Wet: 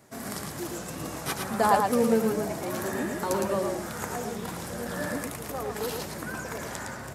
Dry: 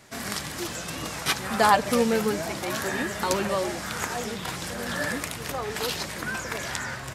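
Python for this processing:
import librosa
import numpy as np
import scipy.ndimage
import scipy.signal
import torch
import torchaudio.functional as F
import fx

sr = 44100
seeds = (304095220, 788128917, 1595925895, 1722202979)

p1 = fx.highpass(x, sr, hz=110.0, slope=6)
p2 = fx.peak_eq(p1, sr, hz=3200.0, db=-11.5, octaves=2.6)
y = p2 + fx.echo_single(p2, sr, ms=111, db=-4.0, dry=0)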